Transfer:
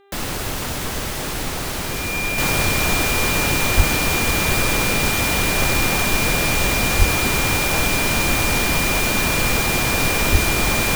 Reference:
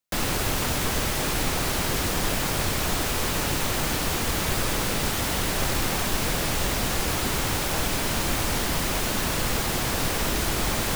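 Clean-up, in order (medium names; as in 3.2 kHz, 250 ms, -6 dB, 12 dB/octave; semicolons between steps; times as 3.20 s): de-hum 398 Hz, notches 10; band-stop 2.4 kHz, Q 30; 3.76–3.88 s: high-pass 140 Hz 24 dB/octave; 6.98–7.10 s: high-pass 140 Hz 24 dB/octave; 10.31–10.43 s: high-pass 140 Hz 24 dB/octave; trim 0 dB, from 2.38 s -6 dB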